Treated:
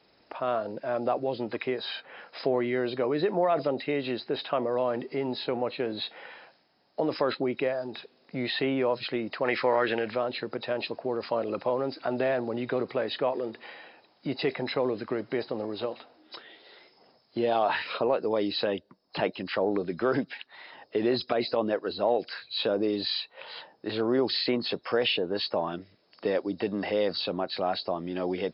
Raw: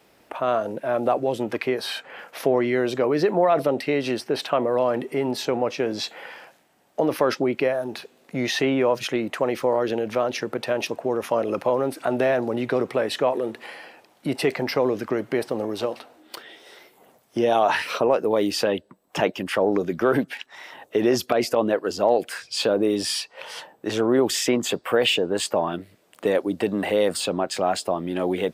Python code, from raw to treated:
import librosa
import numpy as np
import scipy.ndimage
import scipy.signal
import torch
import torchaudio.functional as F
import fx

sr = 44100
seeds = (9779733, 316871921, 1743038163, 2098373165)

y = fx.freq_compress(x, sr, knee_hz=3700.0, ratio=4.0)
y = fx.peak_eq(y, sr, hz=1900.0, db=14.5, octaves=1.7, at=(9.44, 10.1), fade=0.02)
y = F.gain(torch.from_numpy(y), -6.0).numpy()